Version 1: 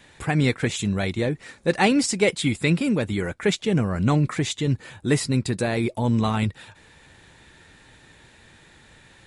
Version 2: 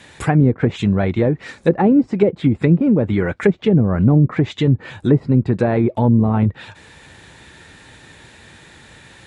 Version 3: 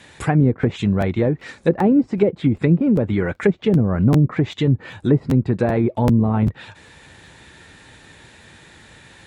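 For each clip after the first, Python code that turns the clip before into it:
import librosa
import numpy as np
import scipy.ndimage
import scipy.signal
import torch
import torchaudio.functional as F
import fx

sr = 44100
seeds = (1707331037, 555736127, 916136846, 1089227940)

y1 = fx.env_lowpass_down(x, sr, base_hz=470.0, full_db=-17.0)
y1 = scipy.signal.sosfilt(scipy.signal.butter(2, 48.0, 'highpass', fs=sr, output='sos'), y1)
y1 = y1 * librosa.db_to_amplitude(8.0)
y2 = fx.buffer_crackle(y1, sr, first_s=0.61, period_s=0.39, block=512, kind='repeat')
y2 = y2 * librosa.db_to_amplitude(-2.0)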